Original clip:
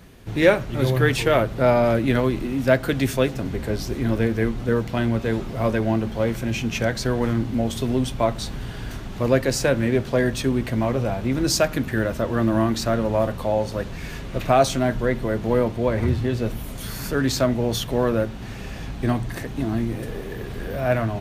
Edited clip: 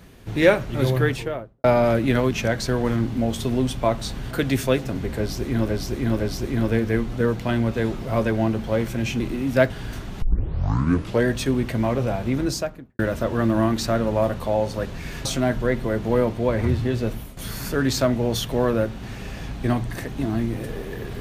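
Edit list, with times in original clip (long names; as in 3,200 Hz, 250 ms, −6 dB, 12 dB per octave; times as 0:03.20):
0:00.84–0:01.64: fade out and dull
0:02.31–0:02.81: swap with 0:06.68–0:08.68
0:03.68–0:04.19: repeat, 3 plays
0:09.20: tape start 1.04 s
0:11.25–0:11.97: fade out and dull
0:14.23–0:14.64: remove
0:16.40–0:16.76: fade out equal-power, to −13.5 dB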